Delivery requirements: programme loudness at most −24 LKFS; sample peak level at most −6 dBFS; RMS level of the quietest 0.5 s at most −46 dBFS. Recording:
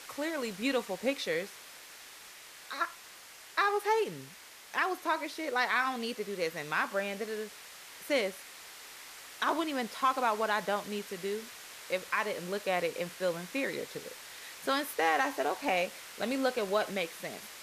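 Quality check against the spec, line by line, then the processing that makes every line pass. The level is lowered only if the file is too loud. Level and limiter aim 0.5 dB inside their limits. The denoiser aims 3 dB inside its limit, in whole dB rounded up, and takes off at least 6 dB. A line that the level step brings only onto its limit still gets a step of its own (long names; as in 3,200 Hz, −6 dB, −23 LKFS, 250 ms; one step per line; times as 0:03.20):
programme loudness −32.5 LKFS: in spec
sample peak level −16.0 dBFS: in spec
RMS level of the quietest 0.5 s −52 dBFS: in spec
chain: no processing needed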